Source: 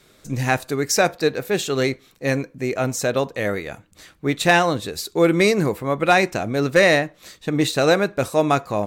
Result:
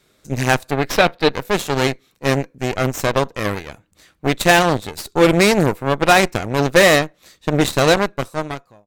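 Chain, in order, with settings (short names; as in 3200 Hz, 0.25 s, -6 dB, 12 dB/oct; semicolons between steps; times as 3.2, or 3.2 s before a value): ending faded out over 1.08 s; added harmonics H 5 -25 dB, 7 -18 dB, 8 -17 dB, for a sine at -4.5 dBFS; 0.71–1.32 resonant high shelf 5000 Hz -9 dB, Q 1.5; gain +3 dB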